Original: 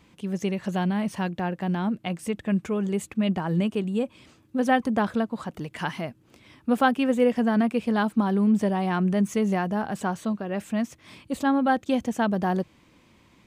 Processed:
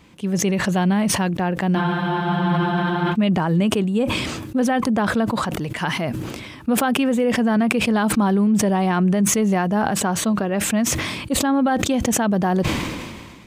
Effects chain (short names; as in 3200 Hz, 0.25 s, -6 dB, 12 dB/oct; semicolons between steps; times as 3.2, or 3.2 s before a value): limiter -18.5 dBFS, peak gain reduction 9 dB; spectral freeze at 1.79, 1.34 s; sustainer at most 33 dB/s; gain +6.5 dB